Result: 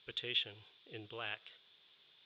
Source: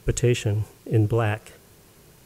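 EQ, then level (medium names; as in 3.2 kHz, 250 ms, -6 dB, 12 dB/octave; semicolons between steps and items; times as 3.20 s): band-pass filter 3.5 kHz, Q 13; distance through air 390 m; +16.5 dB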